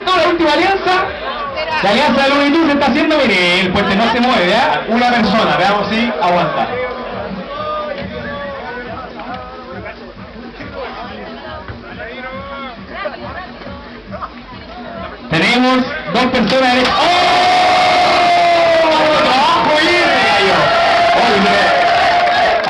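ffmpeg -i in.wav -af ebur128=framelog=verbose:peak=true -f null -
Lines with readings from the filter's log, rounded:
Integrated loudness:
  I:         -11.9 LUFS
  Threshold: -23.4 LUFS
Loudness range:
  LRA:        16.5 LU
  Threshold: -33.7 LUFS
  LRA low:   -26.8 LUFS
  LRA high:  -10.3 LUFS
True peak:
  Peak:       -4.9 dBFS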